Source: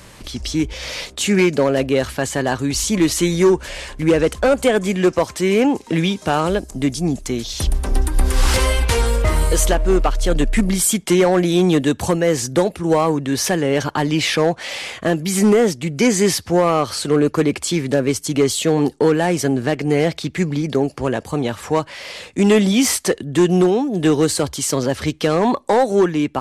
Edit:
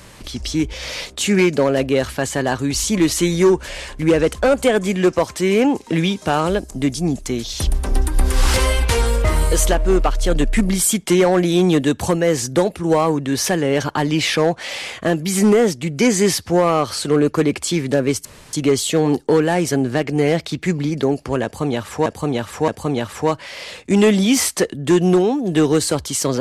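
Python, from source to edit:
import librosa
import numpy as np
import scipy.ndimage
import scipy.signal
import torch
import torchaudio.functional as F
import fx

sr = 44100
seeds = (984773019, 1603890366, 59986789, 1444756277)

y = fx.edit(x, sr, fx.insert_room_tone(at_s=18.25, length_s=0.28),
    fx.repeat(start_s=21.16, length_s=0.62, count=3), tone=tone)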